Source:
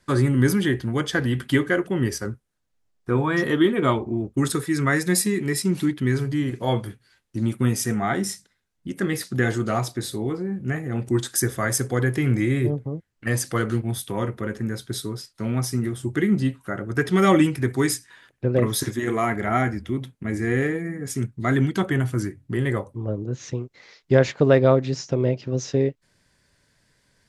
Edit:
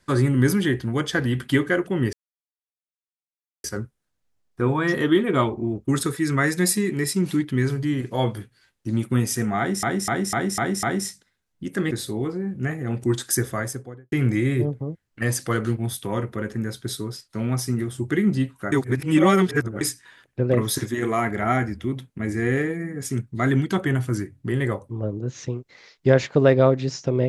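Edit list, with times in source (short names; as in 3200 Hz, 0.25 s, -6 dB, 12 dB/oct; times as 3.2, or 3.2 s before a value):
2.13 insert silence 1.51 s
8.07–8.32 loop, 6 plays
9.15–9.96 cut
11.42–12.17 studio fade out
16.77–17.86 reverse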